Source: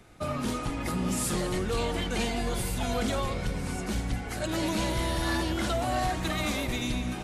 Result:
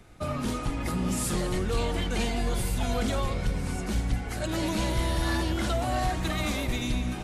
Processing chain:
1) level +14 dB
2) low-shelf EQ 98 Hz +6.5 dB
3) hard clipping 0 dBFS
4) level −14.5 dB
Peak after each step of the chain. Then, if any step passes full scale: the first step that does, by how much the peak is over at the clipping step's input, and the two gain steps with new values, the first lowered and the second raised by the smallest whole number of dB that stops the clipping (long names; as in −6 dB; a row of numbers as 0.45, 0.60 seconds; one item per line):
−7.5, −2.0, −2.0, −16.5 dBFS
no step passes full scale